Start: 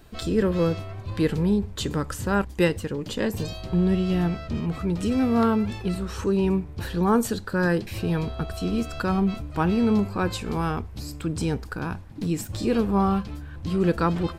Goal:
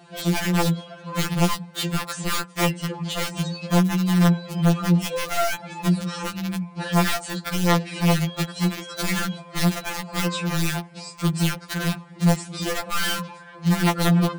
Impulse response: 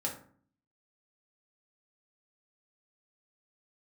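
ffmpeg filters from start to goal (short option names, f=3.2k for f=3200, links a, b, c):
-filter_complex "[0:a]acompressor=threshold=-25dB:ratio=4,bass=f=250:g=7,treble=f=4k:g=-4,acontrast=56,asplit=2[a][b];[1:a]atrim=start_sample=2205,atrim=end_sample=6174[c];[b][c]afir=irnorm=-1:irlink=0,volume=-23dB[d];[a][d]amix=inputs=2:normalize=0,afftfilt=real='re*between(b*sr/4096,150,10000)':imag='im*between(b*sr/4096,150,10000)':win_size=4096:overlap=0.75,lowshelf=f=480:t=q:w=1.5:g=-6,aeval=exprs='(mod(7.08*val(0)+1,2)-1)/7.08':c=same,aeval=exprs='val(0)+0.00141*(sin(2*PI*50*n/s)+sin(2*PI*2*50*n/s)/2+sin(2*PI*3*50*n/s)/3+sin(2*PI*4*50*n/s)/4+sin(2*PI*5*50*n/s)/5)':c=same,afftfilt=real='re*2.83*eq(mod(b,8),0)':imag='im*2.83*eq(mod(b,8),0)':win_size=2048:overlap=0.75,volume=2dB"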